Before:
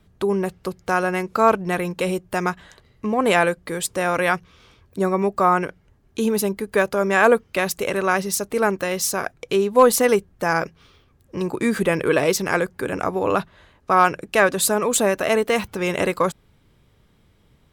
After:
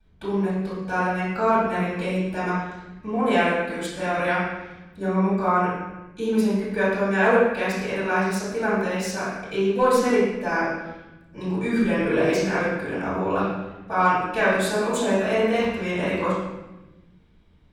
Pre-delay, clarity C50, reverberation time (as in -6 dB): 3 ms, -1.0 dB, 1.0 s